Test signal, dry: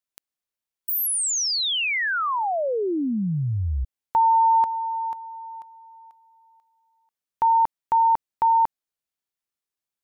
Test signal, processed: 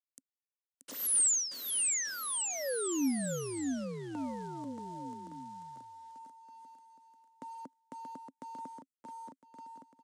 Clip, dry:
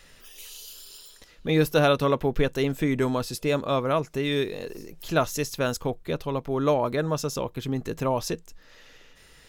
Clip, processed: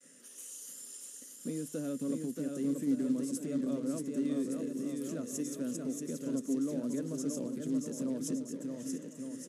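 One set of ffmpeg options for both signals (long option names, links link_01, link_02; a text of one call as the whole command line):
ffmpeg -i in.wav -filter_complex "[0:a]acrossover=split=330[link_01][link_02];[link_02]acompressor=threshold=-41dB:ratio=1.5:attack=0.13:release=809:knee=2.83:detection=peak[link_03];[link_01][link_03]amix=inputs=2:normalize=0,equalizer=frequency=250:width_type=o:width=0.67:gain=7,equalizer=frequency=1000:width_type=o:width=0.67:gain=-8,equalizer=frequency=4000:width_type=o:width=0.67:gain=-8,agate=range=-33dB:threshold=-52dB:ratio=3:release=113:detection=rms,acompressor=threshold=-27dB:ratio=6:attack=4.6:release=127:knee=6:detection=rms,aexciter=amount=9.6:drive=0.8:freq=6400,aecho=1:1:630|1166|1621|2008|2336:0.631|0.398|0.251|0.158|0.1,acrusher=bits=5:mode=log:mix=0:aa=0.000001,highpass=frequency=160:width=0.5412,highpass=frequency=160:width=1.3066,equalizer=frequency=270:width_type=q:width=4:gain=8,equalizer=frequency=530:width_type=q:width=4:gain=6,equalizer=frequency=800:width_type=q:width=4:gain=-9,equalizer=frequency=2400:width_type=q:width=4:gain=-6,lowpass=frequency=9200:width=0.5412,lowpass=frequency=9200:width=1.3066,volume=-8dB" -ar 32000 -c:a libmp3lame -b:a 320k out.mp3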